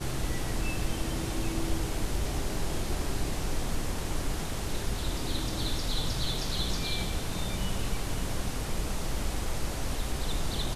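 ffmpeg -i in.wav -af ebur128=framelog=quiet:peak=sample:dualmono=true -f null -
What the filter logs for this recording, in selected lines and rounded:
Integrated loudness:
  I:         -30.3 LUFS
  Threshold: -40.2 LUFS
Loudness range:
  LRA:         1.7 LU
  Threshold: -50.2 LUFS
  LRA low:   -31.0 LUFS
  LRA high:  -29.3 LUFS
Sample peak:
  Peak:      -16.3 dBFS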